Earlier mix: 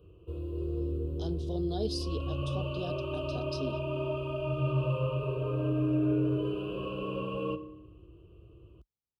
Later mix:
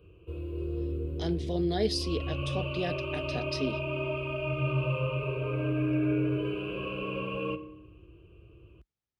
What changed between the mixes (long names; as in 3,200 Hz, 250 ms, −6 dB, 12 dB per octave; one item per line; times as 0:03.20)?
speech +5.5 dB
master: remove Butterworth band-reject 2,000 Hz, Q 1.2